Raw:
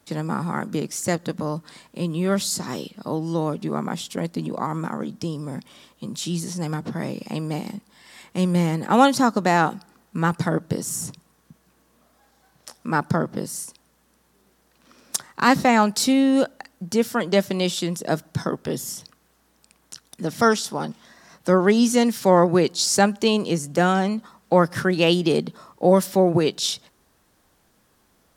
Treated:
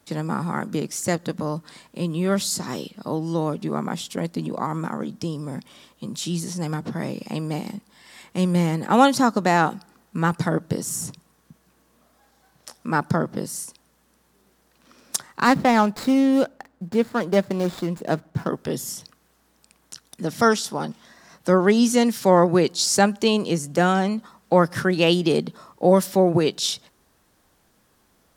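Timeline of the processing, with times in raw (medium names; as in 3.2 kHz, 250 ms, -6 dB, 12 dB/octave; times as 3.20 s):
15.45–18.48 s: median filter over 15 samples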